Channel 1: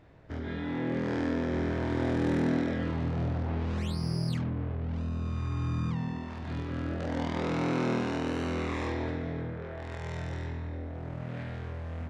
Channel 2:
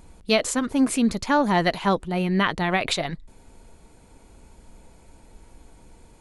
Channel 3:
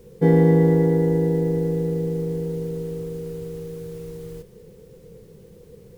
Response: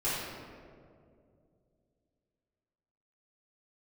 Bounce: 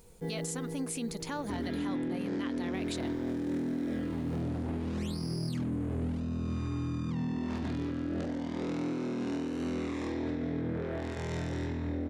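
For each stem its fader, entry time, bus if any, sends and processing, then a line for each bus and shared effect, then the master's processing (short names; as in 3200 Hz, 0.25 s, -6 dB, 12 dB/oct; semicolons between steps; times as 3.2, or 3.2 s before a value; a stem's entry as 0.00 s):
+2.5 dB, 1.20 s, no send, bell 280 Hz +12 dB 1.4 oct; compressor, threshold -27 dBFS, peak gain reduction 12.5 dB
-11.0 dB, 0.00 s, no send, compressor 2.5:1, threshold -23 dBFS, peak gain reduction 6 dB
-15.5 dB, 0.00 s, muted 1.78–2.74, no send, auto duck -8 dB, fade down 0.80 s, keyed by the second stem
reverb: off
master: high shelf 3900 Hz +11 dB; limiter -26.5 dBFS, peak gain reduction 10.5 dB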